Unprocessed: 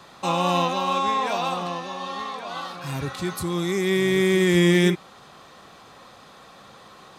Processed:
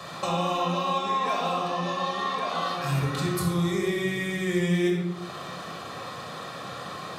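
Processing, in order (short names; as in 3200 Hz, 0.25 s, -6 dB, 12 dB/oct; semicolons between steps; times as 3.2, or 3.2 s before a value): HPF 120 Hz 12 dB/oct; compressor 4:1, threshold -37 dBFS, peak gain reduction 19 dB; shoebox room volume 4000 m³, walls furnished, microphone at 6 m; gain +5 dB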